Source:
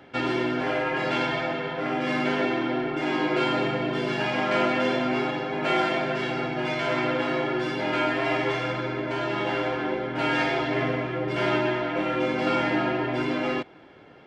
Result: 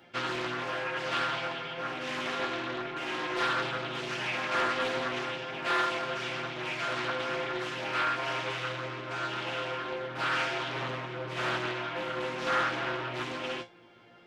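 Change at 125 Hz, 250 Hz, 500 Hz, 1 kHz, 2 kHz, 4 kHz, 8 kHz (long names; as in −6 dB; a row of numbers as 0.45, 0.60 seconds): −9.0 dB, −13.5 dB, −9.0 dB, −4.5 dB, −4.0 dB, −2.0 dB, can't be measured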